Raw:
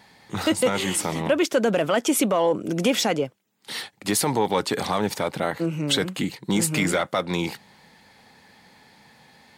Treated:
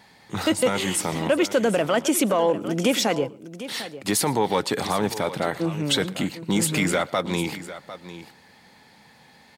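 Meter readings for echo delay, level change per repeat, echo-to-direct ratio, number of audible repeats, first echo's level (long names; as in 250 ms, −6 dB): 116 ms, repeats not evenly spaced, −13.5 dB, 2, −23.5 dB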